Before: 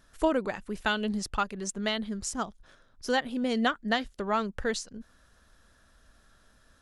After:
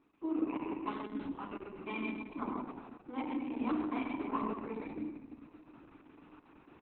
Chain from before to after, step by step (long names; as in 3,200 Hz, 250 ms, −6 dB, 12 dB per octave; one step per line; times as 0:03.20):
parametric band 3,200 Hz −14 dB 0.49 octaves
mains-hum notches 50/100/150/200/250/300/350/400/450 Hz
reversed playback
downward compressor 8 to 1, threshold −43 dBFS, peak gain reduction 22.5 dB
reversed playback
formant filter u
on a send: repeating echo 137 ms, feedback 51%, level −4.5 dB
on the sum: feedback delay network reverb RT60 1.4 s, low-frequency decay 1.45×, high-frequency decay 0.7×, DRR −1 dB
formants moved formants +2 semitones
level +17.5 dB
Opus 6 kbit/s 48,000 Hz